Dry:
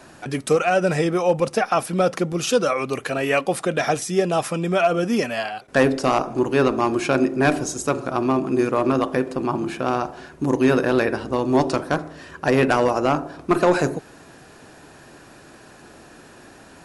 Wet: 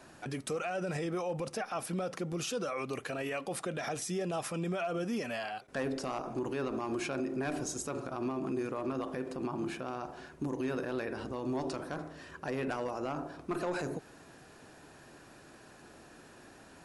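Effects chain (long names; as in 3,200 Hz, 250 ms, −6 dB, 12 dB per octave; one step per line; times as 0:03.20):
brickwall limiter −18 dBFS, peak gain reduction 11 dB
level −9 dB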